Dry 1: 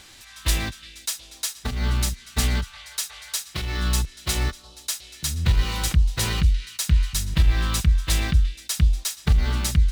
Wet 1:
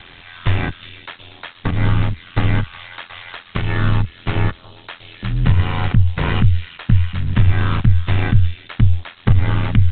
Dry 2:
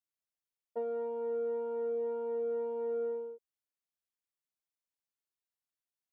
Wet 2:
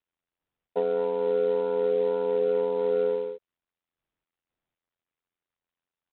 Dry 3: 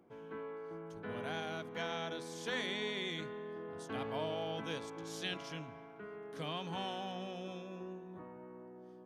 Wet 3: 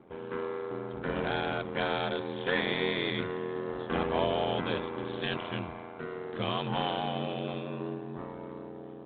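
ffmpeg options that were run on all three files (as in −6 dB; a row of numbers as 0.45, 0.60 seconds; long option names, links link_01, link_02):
-filter_complex "[0:a]acrossover=split=2500[link_01][link_02];[link_02]acompressor=threshold=-44dB:ratio=4:attack=1:release=60[link_03];[link_01][link_03]amix=inputs=2:normalize=0,aeval=exprs='val(0)*sin(2*PI*43*n/s)':channel_layout=same,asplit=2[link_04][link_05];[link_05]alimiter=limit=-19.5dB:level=0:latency=1:release=481,volume=3dB[link_06];[link_04][link_06]amix=inputs=2:normalize=0,volume=5dB" -ar 8000 -c:a adpcm_ima_wav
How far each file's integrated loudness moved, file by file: +5.5, +9.5, +8.5 LU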